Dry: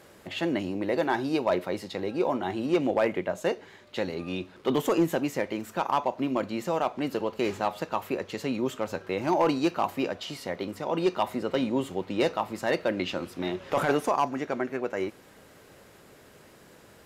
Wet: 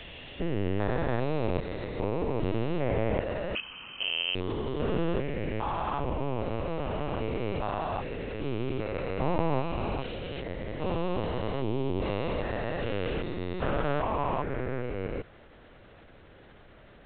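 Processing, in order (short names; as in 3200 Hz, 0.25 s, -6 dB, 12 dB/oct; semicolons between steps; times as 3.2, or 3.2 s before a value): stepped spectrum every 0.4 s; LPC vocoder at 8 kHz pitch kept; 3.55–4.35 inverted band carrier 3100 Hz; gain +2.5 dB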